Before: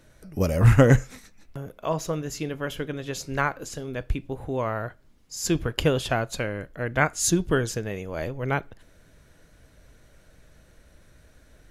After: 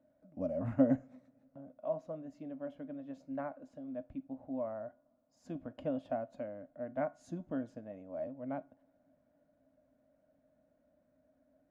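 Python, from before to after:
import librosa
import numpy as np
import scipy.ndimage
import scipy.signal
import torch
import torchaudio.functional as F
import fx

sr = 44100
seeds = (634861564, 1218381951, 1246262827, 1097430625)

y = fx.double_bandpass(x, sr, hz=400.0, octaves=1.2)
y = fx.comb_fb(y, sr, f0_hz=360.0, decay_s=0.26, harmonics='all', damping=0.0, mix_pct=50)
y = fx.rev_double_slope(y, sr, seeds[0], early_s=0.29, late_s=3.4, knee_db=-22, drr_db=19.5)
y = y * librosa.db_to_amplitude(1.5)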